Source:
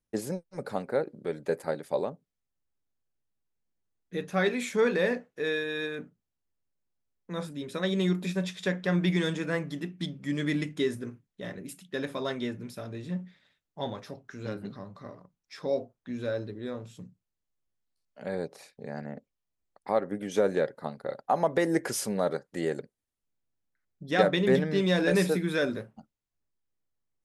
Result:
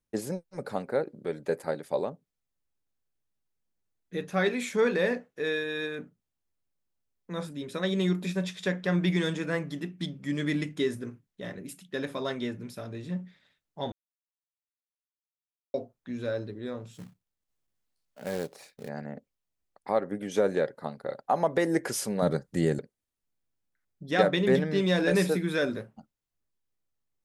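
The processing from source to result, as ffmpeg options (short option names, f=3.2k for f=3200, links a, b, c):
-filter_complex "[0:a]asettb=1/sr,asplit=3[a][b][c];[a]atrim=end=16.934[d];[b]atrim=start=16.93:end=18.89,asetpts=PTS-STARTPTS,afade=t=in:d=0.004:c=qsin,afade=t=out:st=1.956:d=0.004:c=qsin,acrusher=bits=3:mode=log:mix=0:aa=0.000001[e];[c]atrim=start=18.886[f];[d][e]acrossfade=d=0.004:c1=hsin:c2=qsin[g];[g][f]acrossfade=d=0.004:c1=qsin:c2=hsin,asettb=1/sr,asplit=3[h][i][j];[h]atrim=end=22.224[k];[i]atrim=start=22.22:end=22.79,asetpts=PTS-STARTPTS,afade=t=in:d=0.004:c=qsin,afade=t=out:st=0.566:d=0.004:c=qsin,bass=f=250:g=14,treble=f=4k:g=5[l];[j]atrim=start=22.786[m];[k][l]acrossfade=d=0.004:c1=hsin:c2=qsin[n];[n][m]acrossfade=d=0.004:c1=qsin:c2=hsin,asplit=3[o][p][q];[o]atrim=end=13.92,asetpts=PTS-STARTPTS,afade=t=out:st=13.916:d=0.004:c=hsin[r];[p]atrim=start=13.92:end=15.74,asetpts=PTS-STARTPTS,volume=0[s];[q]atrim=start=15.74,asetpts=PTS-STARTPTS,afade=t=in:d=0.004:c=hsin[t];[r][s][t]concat=n=3:v=0:a=1"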